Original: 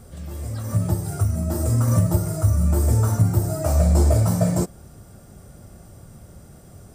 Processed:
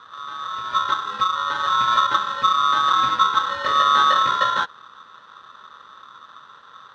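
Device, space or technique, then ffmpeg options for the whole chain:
ring modulator pedal into a guitar cabinet: -af "aeval=exprs='val(0)*sgn(sin(2*PI*1200*n/s))':channel_layout=same,highpass=85,equalizer=frequency=130:width_type=q:width=4:gain=4,equalizer=frequency=700:width_type=q:width=4:gain=-9,equalizer=frequency=1500:width_type=q:width=4:gain=3,equalizer=frequency=2300:width_type=q:width=4:gain=-8,lowpass=frequency=4000:width=0.5412,lowpass=frequency=4000:width=1.3066"

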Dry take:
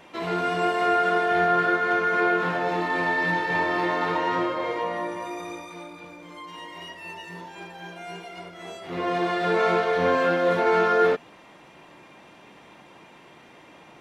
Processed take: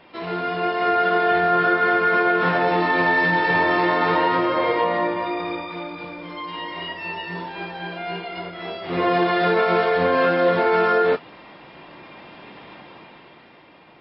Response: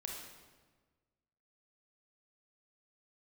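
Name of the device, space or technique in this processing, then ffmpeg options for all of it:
low-bitrate web radio: -af "dynaudnorm=framelen=130:gausssize=17:maxgain=9dB,alimiter=limit=-9.5dB:level=0:latency=1:release=106" -ar 12000 -c:a libmp3lame -b:a 24k

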